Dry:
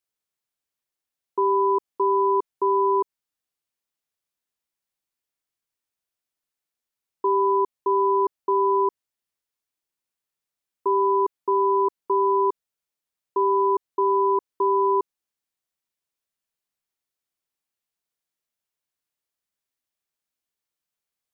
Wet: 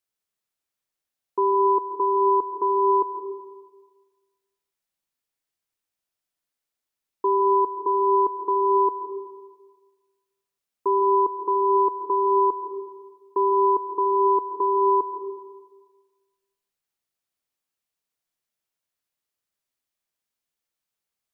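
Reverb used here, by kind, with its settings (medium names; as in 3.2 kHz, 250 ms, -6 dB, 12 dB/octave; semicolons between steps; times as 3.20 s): algorithmic reverb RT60 1.4 s, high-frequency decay 0.9×, pre-delay 85 ms, DRR 5.5 dB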